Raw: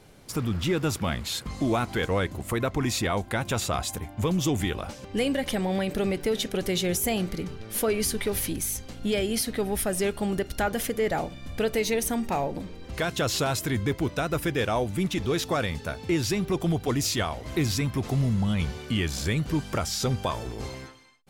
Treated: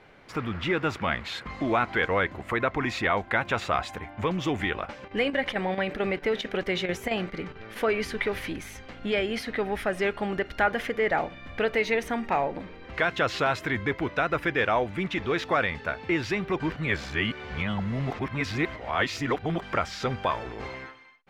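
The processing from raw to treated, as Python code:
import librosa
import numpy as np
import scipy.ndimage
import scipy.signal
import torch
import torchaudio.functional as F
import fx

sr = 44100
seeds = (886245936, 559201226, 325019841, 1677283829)

y = fx.chopper(x, sr, hz=4.5, depth_pct=60, duty_pct=85, at=(4.83, 7.75), fade=0.02)
y = fx.edit(y, sr, fx.reverse_span(start_s=16.6, length_s=3.02), tone=tone)
y = fx.curve_eq(y, sr, hz=(130.0, 2000.0, 10000.0), db=(0, 14, -15))
y = y * 10.0 ** (-6.5 / 20.0)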